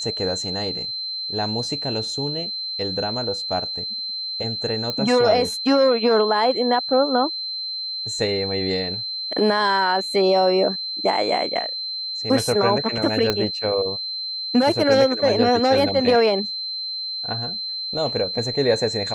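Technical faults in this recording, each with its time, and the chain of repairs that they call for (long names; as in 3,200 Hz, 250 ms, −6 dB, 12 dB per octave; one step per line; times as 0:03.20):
whistle 4,100 Hz −26 dBFS
0:04.90: click −12 dBFS
0:13.30: click −6 dBFS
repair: click removal
notch filter 4,100 Hz, Q 30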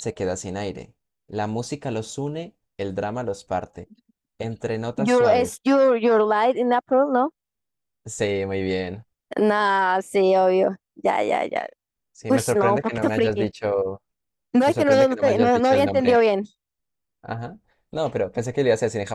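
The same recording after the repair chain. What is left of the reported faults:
0:13.30: click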